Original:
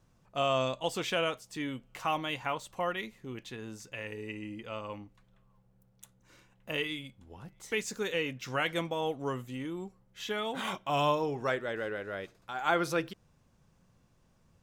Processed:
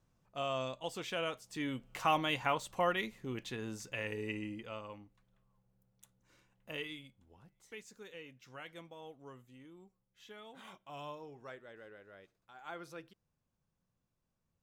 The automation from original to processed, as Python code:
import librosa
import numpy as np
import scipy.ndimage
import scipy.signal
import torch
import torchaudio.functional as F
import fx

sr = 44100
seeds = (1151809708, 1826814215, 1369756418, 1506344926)

y = fx.gain(x, sr, db=fx.line((1.09, -8.0), (1.9, 1.0), (4.36, 1.0), (4.96, -8.5), (6.9, -8.5), (7.89, -18.0)))